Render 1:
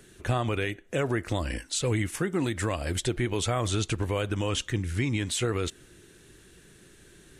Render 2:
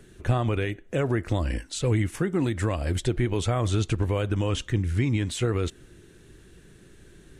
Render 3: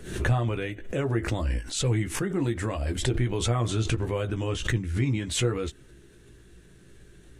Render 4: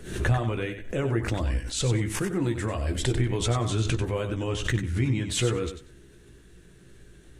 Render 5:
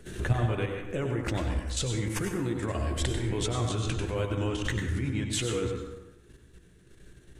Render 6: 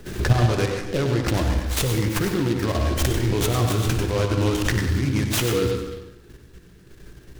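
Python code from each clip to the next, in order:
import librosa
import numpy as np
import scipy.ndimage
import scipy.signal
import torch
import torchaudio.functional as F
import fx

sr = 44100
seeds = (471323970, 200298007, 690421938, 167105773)

y1 = fx.tilt_eq(x, sr, slope=-1.5)
y2 = fx.chorus_voices(y1, sr, voices=4, hz=0.34, base_ms=16, depth_ms=1.7, mix_pct=35)
y2 = fx.pre_swell(y2, sr, db_per_s=80.0)
y3 = fx.echo_feedback(y2, sr, ms=94, feedback_pct=18, wet_db=-9.5)
y4 = fx.level_steps(y3, sr, step_db=10)
y4 = fx.rev_plate(y4, sr, seeds[0], rt60_s=1.0, hf_ratio=0.5, predelay_ms=85, drr_db=5.0)
y5 = fx.room_flutter(y4, sr, wall_m=10.0, rt60_s=0.24)
y5 = fx.noise_mod_delay(y5, sr, seeds[1], noise_hz=2900.0, depth_ms=0.053)
y5 = y5 * 10.0 ** (8.0 / 20.0)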